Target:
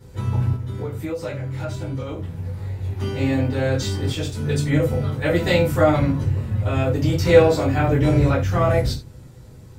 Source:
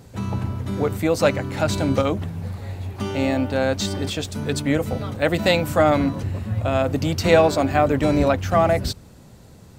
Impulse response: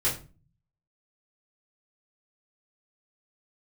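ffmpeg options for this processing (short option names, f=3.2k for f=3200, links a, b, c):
-filter_complex "[1:a]atrim=start_sample=2205,afade=t=out:st=0.16:d=0.01,atrim=end_sample=7497[a];[0:a][a]afir=irnorm=-1:irlink=0,asplit=3[b][c][d];[b]afade=t=out:st=0.56:d=0.02[e];[c]acompressor=threshold=-14dB:ratio=10,afade=t=in:st=0.56:d=0.02,afade=t=out:st=2.83:d=0.02[f];[d]afade=t=in:st=2.83:d=0.02[g];[e][f][g]amix=inputs=3:normalize=0,volume=-10.5dB"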